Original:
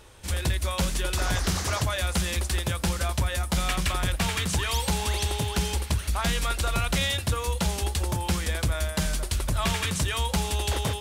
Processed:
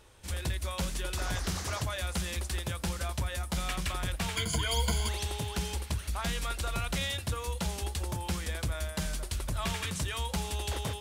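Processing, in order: 4.36–5.09 s: rippled EQ curve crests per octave 1.8, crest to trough 17 dB; trim -7 dB

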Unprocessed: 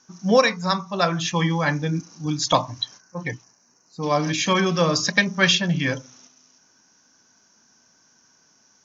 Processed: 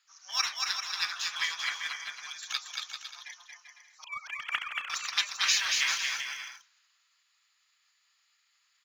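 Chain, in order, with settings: 4.04–4.90 s: formants replaced by sine waves; spectral gate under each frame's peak -15 dB weak; high-pass 1.2 kHz 24 dB/octave; in parallel at -6 dB: crossover distortion -35.5 dBFS; 5.51–5.98 s: on the sum: power-law waveshaper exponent 0.7; on a send: bouncing-ball echo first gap 230 ms, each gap 0.7×, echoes 5; on the sum: trim -2.5 dB

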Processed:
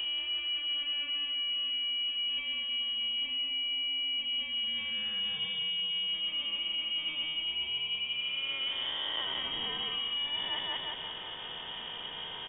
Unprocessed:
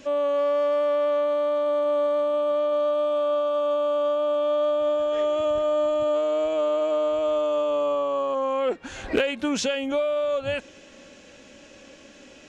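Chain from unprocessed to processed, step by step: reverse spectral sustain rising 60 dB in 1.87 s; feedback delay 179 ms, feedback 35%, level -4 dB; reverse; compression 6:1, threshold -33 dBFS, peak gain reduction 18.5 dB; reverse; frequency inversion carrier 3.5 kHz; three bands compressed up and down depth 40%

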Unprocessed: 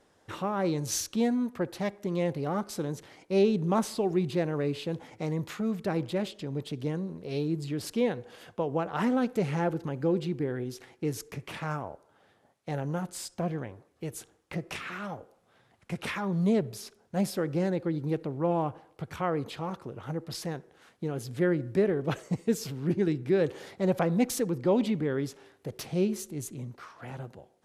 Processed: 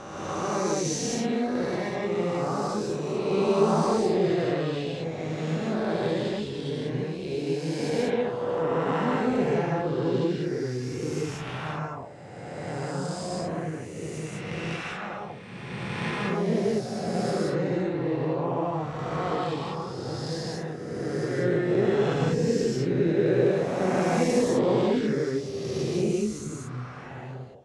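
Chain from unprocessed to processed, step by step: reverse spectral sustain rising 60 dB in 2.37 s; Bessel low-pass 6.1 kHz, order 6; gated-style reverb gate 220 ms rising, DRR -3.5 dB; trim -6 dB

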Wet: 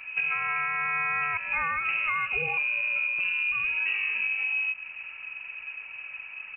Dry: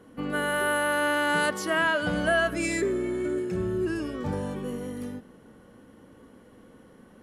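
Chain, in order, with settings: peaking EQ 260 Hz +8.5 dB 0.51 oct; compression 6:1, threshold -34 dBFS, peak gain reduction 13.5 dB; tempo 1.1×; frequency inversion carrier 2.8 kHz; trim +8 dB

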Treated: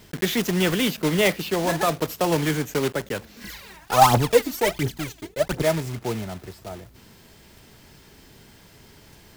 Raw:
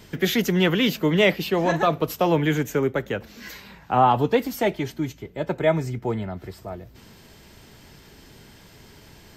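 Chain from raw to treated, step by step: block-companded coder 3-bit; 3.44–5.63 s: phaser 1.4 Hz, delay 3.4 ms, feedback 71%; trim -2 dB

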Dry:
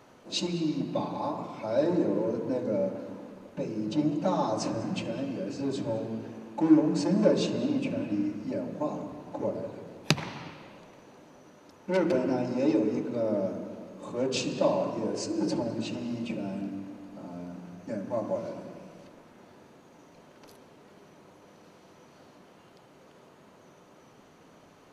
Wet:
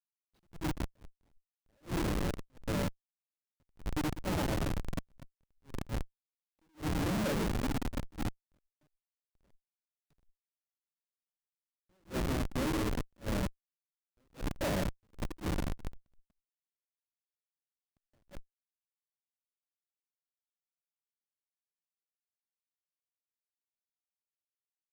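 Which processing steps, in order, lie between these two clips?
Schmitt trigger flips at -25.5 dBFS; attacks held to a fixed rise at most 310 dB/s

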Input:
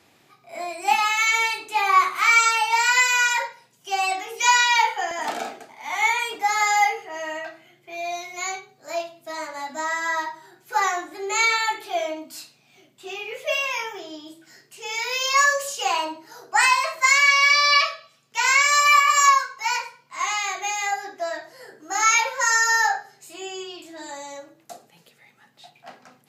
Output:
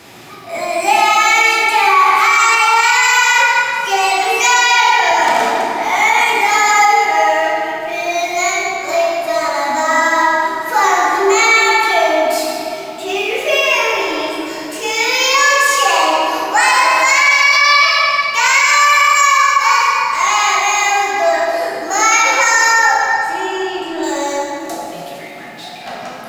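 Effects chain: companding laws mixed up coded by mu; 22.74–24.03 s: treble shelf 2.9 kHz -12 dB; in parallel at 0 dB: compression, threshold -30 dBFS, peak gain reduction 17.5 dB; on the sum: reverberation RT60 3.3 s, pre-delay 14 ms, DRR -3.5 dB; loudness maximiser +5 dB; trim -1 dB

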